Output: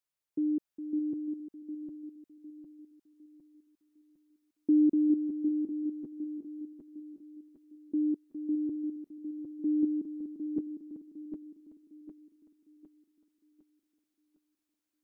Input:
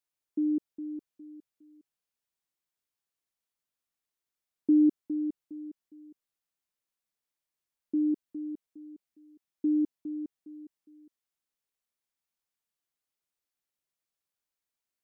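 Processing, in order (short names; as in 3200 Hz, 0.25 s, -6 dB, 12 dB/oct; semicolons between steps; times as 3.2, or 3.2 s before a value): regenerating reverse delay 0.378 s, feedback 63%, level -3.5 dB; gain -2 dB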